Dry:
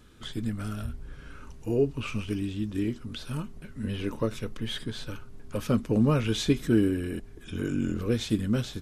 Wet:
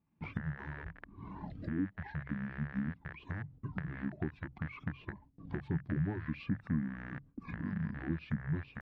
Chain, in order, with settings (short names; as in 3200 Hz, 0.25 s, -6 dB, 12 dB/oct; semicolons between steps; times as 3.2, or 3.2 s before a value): rattling part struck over -36 dBFS, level -18 dBFS; recorder AGC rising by 32 dB/s; reverb removal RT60 1 s; compressor 3:1, threshold -34 dBFS, peak gain reduction 12.5 dB; notches 50/100/150/200 Hz; pitch shift -6.5 st; HPF 110 Hz 12 dB/oct; low shelf 410 Hz +10.5 dB; gate with hold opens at -39 dBFS; air absorption 410 m; gain -6 dB